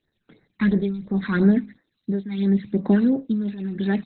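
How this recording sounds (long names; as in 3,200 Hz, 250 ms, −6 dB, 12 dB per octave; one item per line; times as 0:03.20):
phaser sweep stages 12, 2.9 Hz, lowest notch 550–3,100 Hz
tremolo triangle 0.77 Hz, depth 90%
Opus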